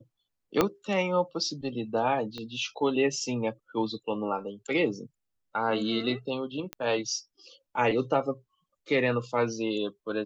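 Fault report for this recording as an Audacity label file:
0.610000	0.610000	pop -8 dBFS
2.380000	2.380000	pop -25 dBFS
6.730000	6.730000	pop -19 dBFS

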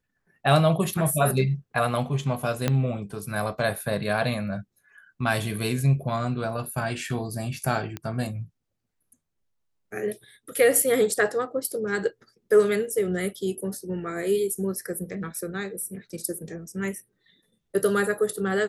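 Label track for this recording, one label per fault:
2.680000	2.680000	pop -9 dBFS
7.970000	7.970000	pop -17 dBFS

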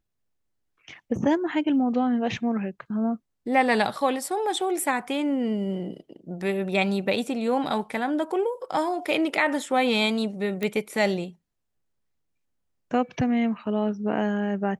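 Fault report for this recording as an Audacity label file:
10.630000	10.630000	pop -14 dBFS

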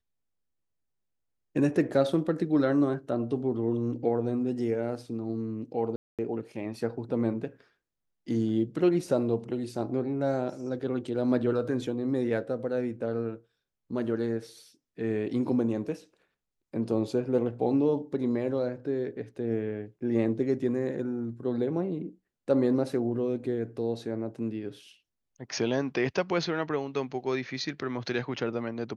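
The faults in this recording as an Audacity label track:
5.960000	6.190000	gap 0.227 s

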